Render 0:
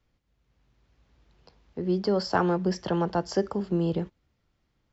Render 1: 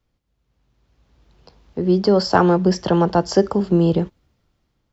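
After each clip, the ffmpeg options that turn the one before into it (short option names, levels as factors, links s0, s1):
-af "equalizer=f=2000:t=o:w=0.99:g=-3.5,dynaudnorm=f=350:g=7:m=3.76,volume=1.12"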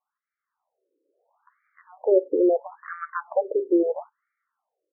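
-af "afftfilt=real='re*between(b*sr/1024,390*pow(1700/390,0.5+0.5*sin(2*PI*0.75*pts/sr))/1.41,390*pow(1700/390,0.5+0.5*sin(2*PI*0.75*pts/sr))*1.41)':imag='im*between(b*sr/1024,390*pow(1700/390,0.5+0.5*sin(2*PI*0.75*pts/sr))/1.41,390*pow(1700/390,0.5+0.5*sin(2*PI*0.75*pts/sr))*1.41)':win_size=1024:overlap=0.75"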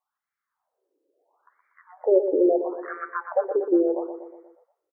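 -af "aecho=1:1:120|240|360|480|600|720:0.376|0.195|0.102|0.0528|0.0275|0.0143"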